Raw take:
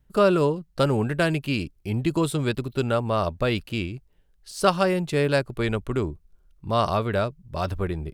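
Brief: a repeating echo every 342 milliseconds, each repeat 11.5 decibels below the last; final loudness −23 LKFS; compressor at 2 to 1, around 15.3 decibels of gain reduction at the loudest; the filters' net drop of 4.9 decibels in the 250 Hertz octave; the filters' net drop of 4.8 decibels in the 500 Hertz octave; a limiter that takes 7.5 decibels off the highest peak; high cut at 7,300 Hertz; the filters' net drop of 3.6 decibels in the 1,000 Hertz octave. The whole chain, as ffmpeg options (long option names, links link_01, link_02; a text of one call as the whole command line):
ffmpeg -i in.wav -af "lowpass=7300,equalizer=frequency=250:width_type=o:gain=-6,equalizer=frequency=500:width_type=o:gain=-3.5,equalizer=frequency=1000:width_type=o:gain=-3.5,acompressor=threshold=-47dB:ratio=2,alimiter=level_in=8.5dB:limit=-24dB:level=0:latency=1,volume=-8.5dB,aecho=1:1:342|684|1026:0.266|0.0718|0.0194,volume=20.5dB" out.wav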